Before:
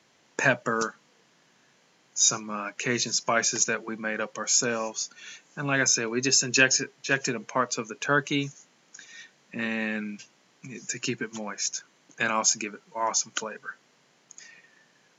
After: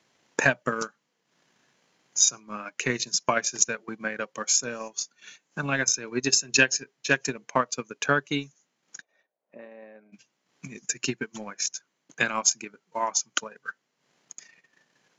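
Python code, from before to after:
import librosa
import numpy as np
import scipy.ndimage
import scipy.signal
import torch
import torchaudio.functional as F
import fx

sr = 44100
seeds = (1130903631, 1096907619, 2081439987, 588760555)

y = fx.transient(x, sr, attack_db=9, sustain_db=-10)
y = fx.bandpass_q(y, sr, hz=610.0, q=3.9, at=(9.0, 10.12), fade=0.02)
y = y * librosa.db_to_amplitude(-4.5)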